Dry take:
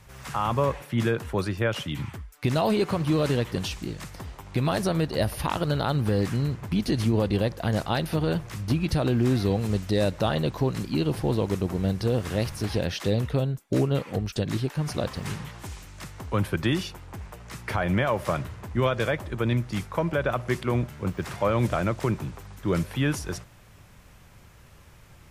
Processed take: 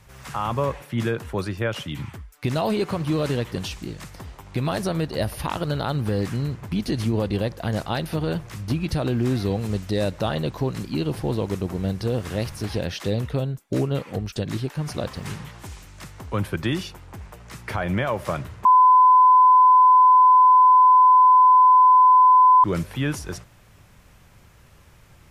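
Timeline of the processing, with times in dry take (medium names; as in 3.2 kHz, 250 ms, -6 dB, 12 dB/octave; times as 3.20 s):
18.65–22.64 s: bleep 1.01 kHz -10 dBFS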